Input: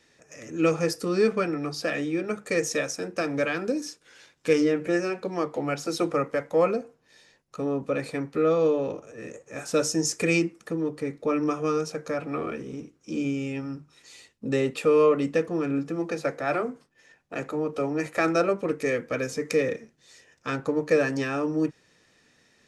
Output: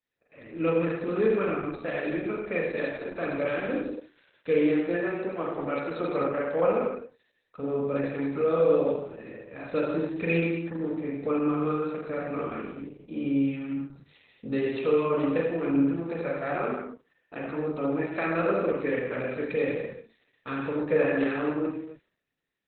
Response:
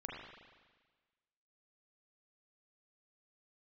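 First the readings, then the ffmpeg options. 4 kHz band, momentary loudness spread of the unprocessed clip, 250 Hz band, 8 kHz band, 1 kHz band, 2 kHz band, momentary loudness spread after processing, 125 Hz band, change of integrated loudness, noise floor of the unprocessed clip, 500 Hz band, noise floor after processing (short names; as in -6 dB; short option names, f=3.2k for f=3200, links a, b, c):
-10.0 dB, 11 LU, -0.5 dB, under -40 dB, -2.0 dB, -2.5 dB, 12 LU, -1.5 dB, -1.5 dB, -64 dBFS, -1.5 dB, -74 dBFS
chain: -filter_complex "[0:a]agate=range=-33dB:threshold=-48dB:ratio=3:detection=peak[a];[1:a]atrim=start_sample=2205,afade=t=out:st=0.35:d=0.01,atrim=end_sample=15876[b];[a][b]afir=irnorm=-1:irlink=0" -ar 48000 -c:a libopus -b:a 8k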